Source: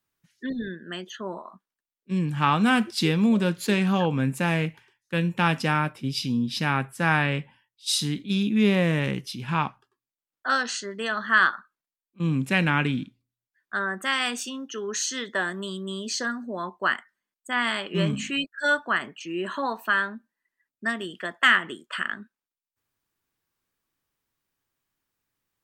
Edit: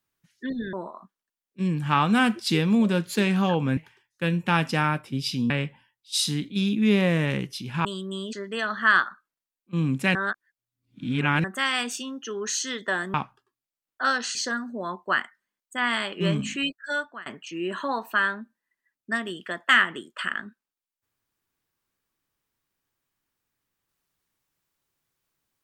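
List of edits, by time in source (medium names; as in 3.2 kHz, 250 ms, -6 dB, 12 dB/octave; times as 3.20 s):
0.73–1.24 s: delete
4.28–4.68 s: delete
6.41–7.24 s: delete
9.59–10.80 s: swap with 15.61–16.09 s
12.62–13.91 s: reverse
18.39–19.00 s: fade out, to -23 dB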